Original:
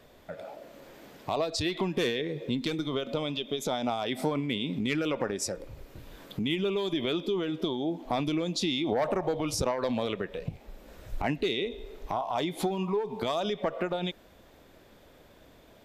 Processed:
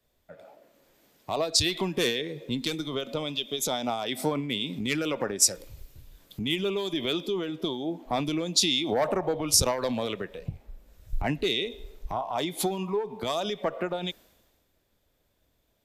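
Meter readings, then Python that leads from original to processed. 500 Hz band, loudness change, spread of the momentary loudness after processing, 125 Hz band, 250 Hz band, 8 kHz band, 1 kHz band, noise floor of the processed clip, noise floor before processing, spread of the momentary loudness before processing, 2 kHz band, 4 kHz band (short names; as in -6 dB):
+0.5 dB, +3.0 dB, 12 LU, 0.0 dB, -0.5 dB, +12.5 dB, +0.5 dB, -72 dBFS, -57 dBFS, 15 LU, +2.0 dB, +6.0 dB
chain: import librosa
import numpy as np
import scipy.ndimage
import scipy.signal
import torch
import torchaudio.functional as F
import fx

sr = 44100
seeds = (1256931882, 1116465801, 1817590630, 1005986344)

y = fx.high_shelf(x, sr, hz=4900.0, db=11.0)
y = fx.band_widen(y, sr, depth_pct=70)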